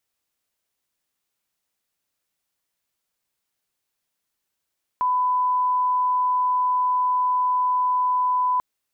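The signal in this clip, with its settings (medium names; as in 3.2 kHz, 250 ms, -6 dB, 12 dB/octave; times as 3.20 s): line-up tone -18 dBFS 3.59 s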